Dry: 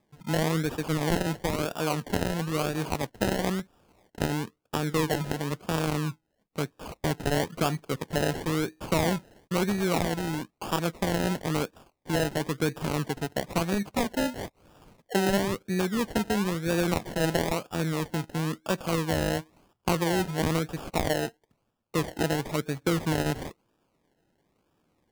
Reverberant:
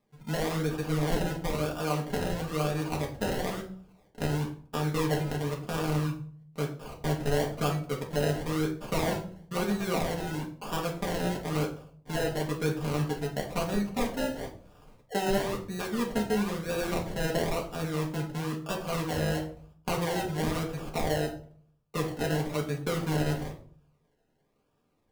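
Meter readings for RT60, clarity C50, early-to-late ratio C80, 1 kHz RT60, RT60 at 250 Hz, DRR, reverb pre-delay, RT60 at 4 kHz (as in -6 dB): 0.50 s, 9.5 dB, 14.0 dB, 0.45 s, 0.65 s, -2.0 dB, 4 ms, 0.35 s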